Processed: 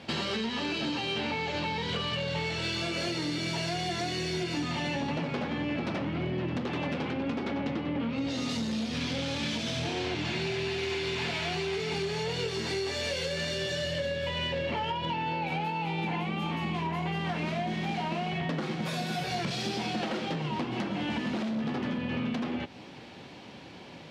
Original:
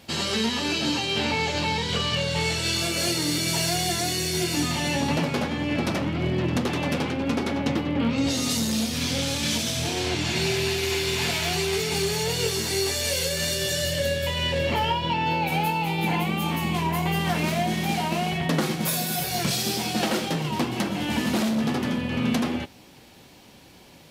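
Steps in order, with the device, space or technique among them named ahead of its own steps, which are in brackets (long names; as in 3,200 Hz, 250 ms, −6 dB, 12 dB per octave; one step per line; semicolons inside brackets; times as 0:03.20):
AM radio (band-pass filter 100–3,700 Hz; downward compressor, threshold −33 dBFS, peak gain reduction 13 dB; soft clipping −26 dBFS, distortion −24 dB)
level +4.5 dB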